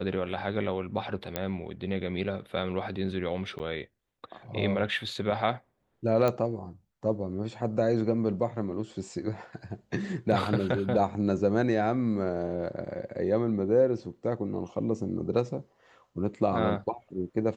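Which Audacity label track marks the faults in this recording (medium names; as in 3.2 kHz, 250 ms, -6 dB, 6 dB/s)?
1.360000	1.360000	pop -13 dBFS
3.590000	3.600000	dropout 8.8 ms
6.280000	6.280000	pop -15 dBFS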